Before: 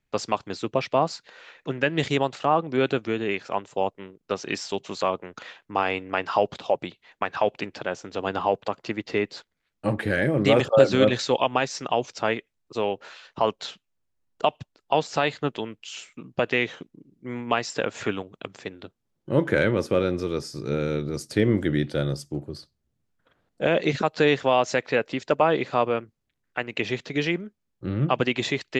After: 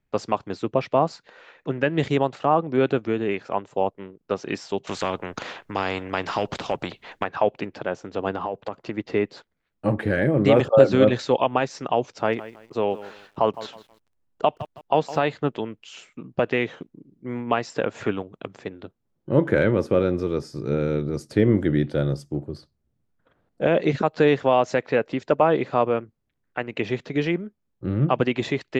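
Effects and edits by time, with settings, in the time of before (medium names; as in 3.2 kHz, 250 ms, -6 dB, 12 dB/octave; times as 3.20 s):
4.87–7.24 s: spectrum-flattening compressor 2:1
8.30–8.95 s: compression, threshold -25 dBFS
12.03–15.19 s: bit-crushed delay 161 ms, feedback 35%, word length 7-bit, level -15 dB
whole clip: treble shelf 2.1 kHz -11 dB; trim +3 dB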